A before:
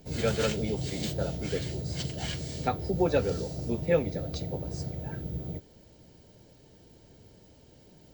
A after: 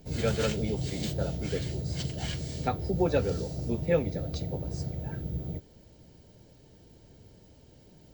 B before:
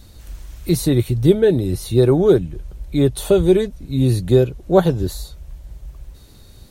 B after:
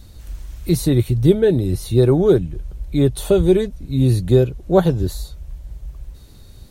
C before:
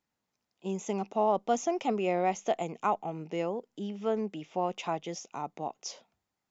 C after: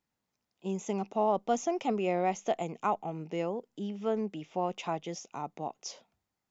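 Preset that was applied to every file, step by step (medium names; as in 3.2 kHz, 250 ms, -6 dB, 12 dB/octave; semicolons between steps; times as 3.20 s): bass shelf 170 Hz +4.5 dB; trim -1.5 dB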